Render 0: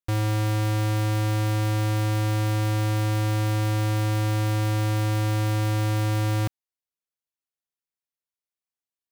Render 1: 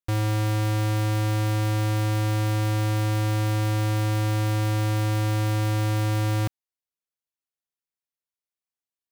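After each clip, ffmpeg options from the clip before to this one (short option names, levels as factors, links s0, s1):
-af anull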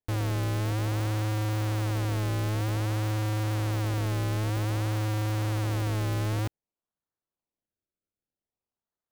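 -af "acrusher=samples=32:mix=1:aa=0.000001:lfo=1:lforange=32:lforate=0.53,volume=0.596"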